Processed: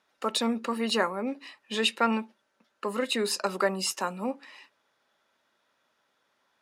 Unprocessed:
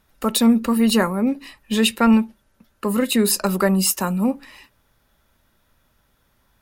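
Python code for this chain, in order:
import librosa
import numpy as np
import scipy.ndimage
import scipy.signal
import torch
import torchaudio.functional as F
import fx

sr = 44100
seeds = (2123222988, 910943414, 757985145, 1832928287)

y = fx.bandpass_edges(x, sr, low_hz=400.0, high_hz=6200.0)
y = y * 10.0 ** (-4.5 / 20.0)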